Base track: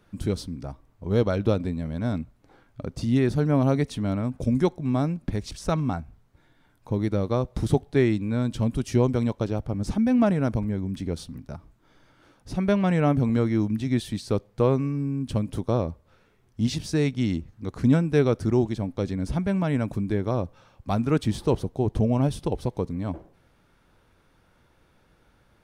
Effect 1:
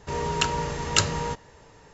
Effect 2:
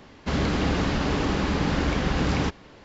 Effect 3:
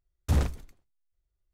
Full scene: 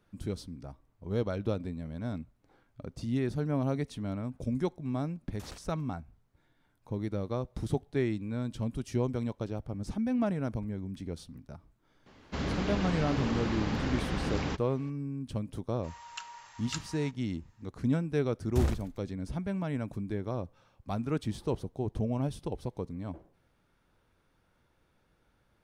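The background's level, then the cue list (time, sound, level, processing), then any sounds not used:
base track -9 dB
5.11 add 3 -11.5 dB + HPF 740 Hz 6 dB/oct
12.06 add 2 -8.5 dB
15.76 add 1 -17 dB + steep high-pass 790 Hz
18.27 add 3 -4 dB

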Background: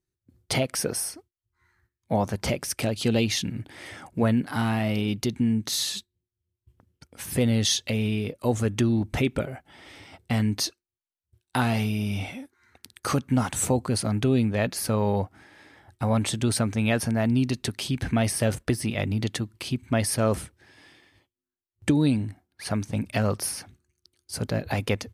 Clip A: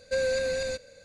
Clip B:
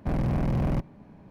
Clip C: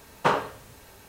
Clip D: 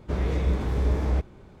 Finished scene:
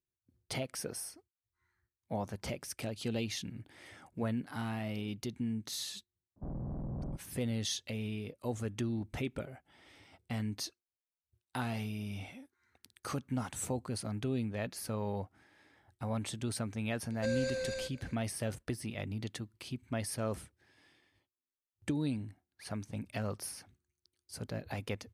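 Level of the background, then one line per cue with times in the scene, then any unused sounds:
background -12.5 dB
6.36 add B -13.5 dB + Bessel low-pass 770 Hz, order 6
17.11 add A -8 dB
not used: C, D

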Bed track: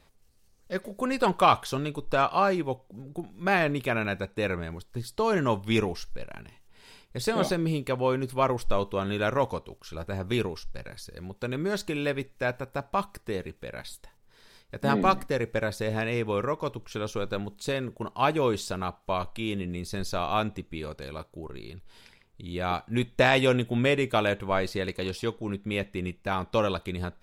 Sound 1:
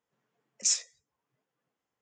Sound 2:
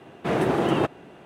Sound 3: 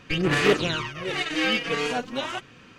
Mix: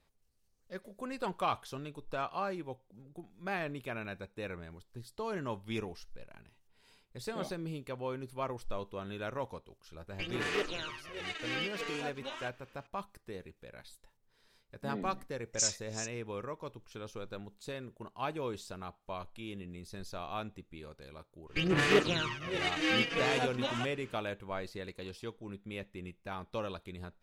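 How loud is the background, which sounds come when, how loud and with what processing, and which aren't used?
bed track -12.5 dB
10.09 add 3 -12 dB + bell 130 Hz -11.5 dB 1.7 oct
14.94 add 1 -4.5 dB + reverse delay 0.295 s, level -11 dB
21.46 add 3 -6 dB, fades 0.10 s
not used: 2

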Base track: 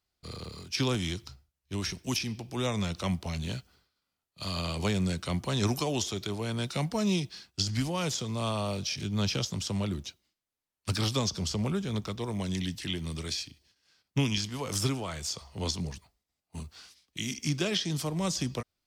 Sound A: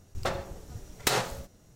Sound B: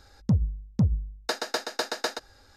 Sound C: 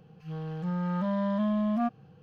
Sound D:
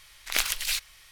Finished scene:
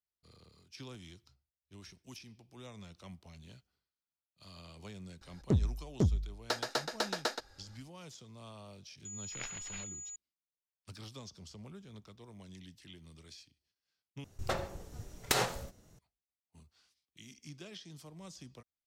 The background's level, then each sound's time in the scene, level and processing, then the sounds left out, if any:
base track -19.5 dB
5.21 add B -5 dB + Doppler distortion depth 0.99 ms
9.05 add D -16.5 dB + pulse-width modulation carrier 6900 Hz
14.24 replace with A -3.5 dB
not used: C

